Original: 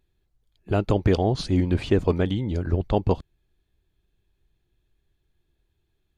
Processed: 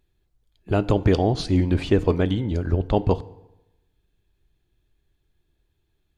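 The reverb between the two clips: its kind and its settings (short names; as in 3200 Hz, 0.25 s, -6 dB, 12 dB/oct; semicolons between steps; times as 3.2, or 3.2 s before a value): FDN reverb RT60 0.96 s, low-frequency decay 1×, high-frequency decay 0.75×, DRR 15.5 dB; gain +1.5 dB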